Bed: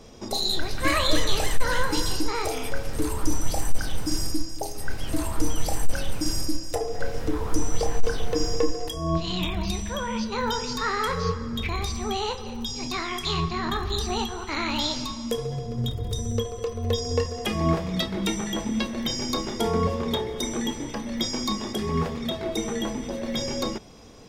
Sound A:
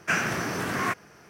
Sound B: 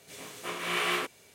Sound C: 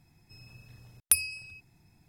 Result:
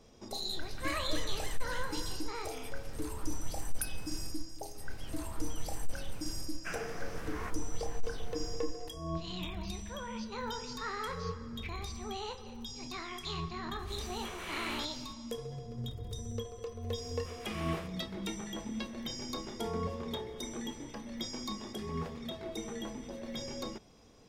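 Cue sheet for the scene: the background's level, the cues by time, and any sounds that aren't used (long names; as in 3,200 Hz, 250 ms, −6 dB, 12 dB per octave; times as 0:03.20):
bed −12 dB
0:02.70: mix in C −15.5 dB
0:06.57: mix in A −16.5 dB
0:13.79: mix in B −6.5 dB + downward compressor 1.5 to 1, threshold −38 dBFS
0:16.81: mix in B −16.5 dB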